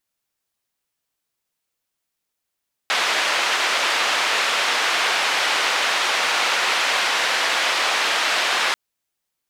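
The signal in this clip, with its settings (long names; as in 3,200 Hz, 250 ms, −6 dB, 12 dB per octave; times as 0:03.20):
band-limited noise 640–3,100 Hz, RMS −20.5 dBFS 5.84 s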